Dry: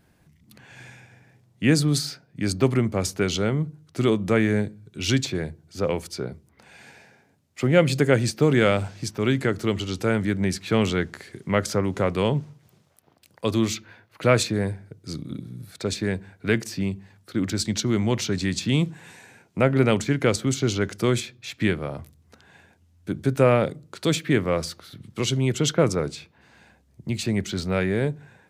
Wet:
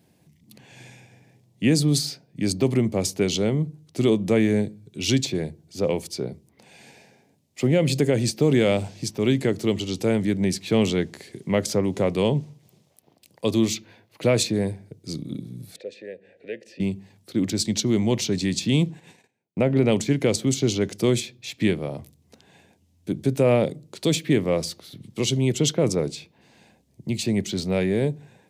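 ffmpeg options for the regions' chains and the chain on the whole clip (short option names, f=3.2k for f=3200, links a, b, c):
-filter_complex "[0:a]asettb=1/sr,asplit=3[a][b][c];[a]atrim=end=15.764[d];[b]atrim=start=15.76:end=16.8,asetpts=PTS-STARTPTS,afade=t=in:d=0.004:c=qsin,afade=t=out:st=1.036:d=0.004:c=qsin,asplit=3[e][f][g];[e]bandpass=f=530:t=q:w=8,volume=0dB[h];[f]bandpass=f=1.84k:t=q:w=8,volume=-6dB[i];[g]bandpass=f=2.48k:t=q:w=8,volume=-9dB[j];[h][i][j]amix=inputs=3:normalize=0,acompressor=mode=upward:threshold=-40dB:ratio=2.5:attack=3.2:release=140:knee=2.83:detection=peak[k];[c]atrim=start=16.796[l];[d][k]acrossfade=d=0.004:c1=hsin:c2=qsin[m];[m][l]acrossfade=d=0.004:c1=qsin:c2=hsin,asettb=1/sr,asplit=3[n][o][p];[n]atrim=end=18.834[q];[o]atrim=start=18.83:end=19.92,asetpts=PTS-STARTPTS,afade=t=in:d=0.004:c=qsin,afade=t=out:st=1.086:d=0.004:c=qsin,agate=range=-26dB:threshold=-47dB:ratio=16:release=100:detection=peak,equalizer=f=11k:w=0.44:g=-7.5[r];[p]atrim=start=19.916[s];[q][r]acrossfade=d=0.004:c1=hsin:c2=qsin[t];[t][s]acrossfade=d=0.004:c1=qsin:c2=hsin,highpass=120,equalizer=f=1.4k:w=1.7:g=-13.5,alimiter=level_in=11dB:limit=-1dB:release=50:level=0:latency=1,volume=-8.5dB"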